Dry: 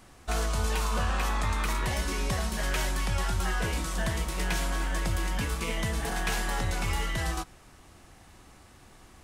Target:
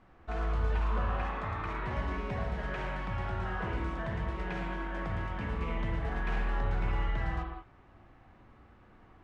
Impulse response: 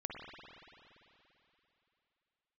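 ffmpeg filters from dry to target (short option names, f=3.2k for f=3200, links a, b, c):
-filter_complex "[0:a]lowpass=1.9k[a];[1:a]atrim=start_sample=2205,afade=t=out:st=0.27:d=0.01,atrim=end_sample=12348[b];[a][b]afir=irnorm=-1:irlink=0,volume=-2dB"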